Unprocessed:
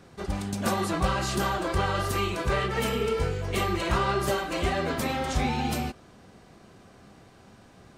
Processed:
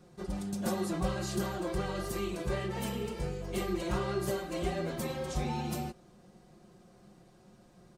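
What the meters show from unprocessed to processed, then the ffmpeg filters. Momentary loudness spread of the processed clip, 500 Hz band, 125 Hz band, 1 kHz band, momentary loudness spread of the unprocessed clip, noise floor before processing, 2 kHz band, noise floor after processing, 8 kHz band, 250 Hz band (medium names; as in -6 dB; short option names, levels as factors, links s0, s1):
4 LU, -6.0 dB, -6.5 dB, -11.0 dB, 4 LU, -54 dBFS, -11.5 dB, -60 dBFS, -6.5 dB, -4.0 dB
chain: -af "equalizer=f=2100:t=o:w=2.2:g=-7.5,aecho=1:1:5.6:0.7,volume=0.473"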